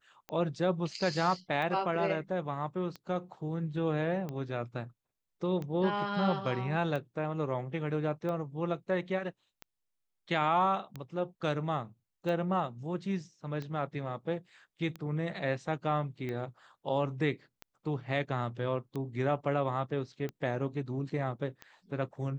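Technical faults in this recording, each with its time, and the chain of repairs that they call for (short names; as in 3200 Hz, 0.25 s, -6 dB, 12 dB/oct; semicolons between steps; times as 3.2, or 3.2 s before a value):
tick 45 rpm -26 dBFS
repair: de-click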